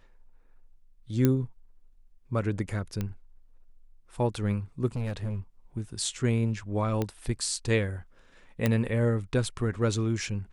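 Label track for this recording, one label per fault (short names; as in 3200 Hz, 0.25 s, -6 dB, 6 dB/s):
1.250000	1.250000	pop -10 dBFS
3.010000	3.010000	pop -18 dBFS
4.870000	5.390000	clipped -28 dBFS
7.020000	7.020000	pop -16 dBFS
8.660000	8.660000	pop -11 dBFS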